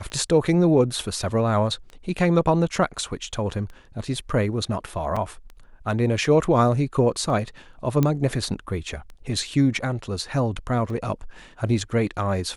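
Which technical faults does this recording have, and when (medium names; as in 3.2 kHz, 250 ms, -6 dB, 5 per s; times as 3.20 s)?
tick 33 1/3 rpm -26 dBFS
5.16–5.17 s: dropout 5.2 ms
8.03 s: pop -9 dBFS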